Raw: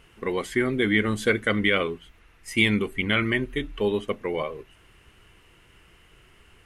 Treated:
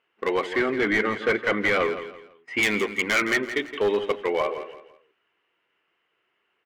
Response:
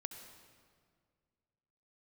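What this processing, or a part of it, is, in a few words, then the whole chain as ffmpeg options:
walkie-talkie: -filter_complex "[0:a]highpass=430,lowpass=2900,asoftclip=type=hard:threshold=0.0668,agate=range=0.1:threshold=0.002:ratio=16:detection=peak,asettb=1/sr,asplit=3[s0][s1][s2];[s0]atrim=end=0.534[s3];[s1]atrim=start=0.53:end=2.63,asetpts=PTS-STARTPTS,afade=t=in:d=0.004:c=qsin,afade=t=out:st=2.096:d=0.004:c=qsin,bass=f=250:g=2,treble=f=4000:g=-15[s4];[s2]atrim=start=2.626[s5];[s3][s4]acrossfade=d=0.004:c1=hsin:c2=qsin[s6];[s6][s5]acrossfade=d=0.004:c1=qsin:c2=hsin,aecho=1:1:167|334|501:0.266|0.0851|0.0272,volume=2.11"

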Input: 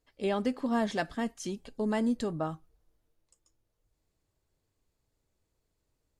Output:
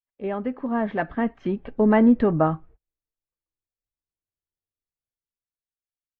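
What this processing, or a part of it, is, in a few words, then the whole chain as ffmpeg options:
action camera in a waterproof case: -af "agate=range=0.02:threshold=0.00112:ratio=16:detection=peak,lowpass=f=2200:w=0.5412,lowpass=f=2200:w=1.3066,highshelf=f=6800:g=-3,dynaudnorm=f=230:g=11:m=3.76,volume=1.19" -ar 44100 -c:a aac -b:a 48k

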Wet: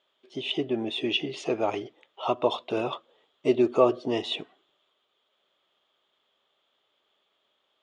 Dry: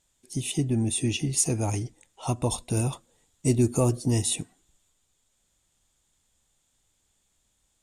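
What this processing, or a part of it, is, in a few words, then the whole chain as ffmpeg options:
phone earpiece: -af "highpass=380,equalizer=f=400:t=q:w=4:g=8,equalizer=f=610:t=q:w=4:g=8,equalizer=f=1200:t=q:w=4:g=9,equalizer=f=3200:t=q:w=4:g=9,lowpass=f=3600:w=0.5412,lowpass=f=3600:w=1.3066,volume=1.26"

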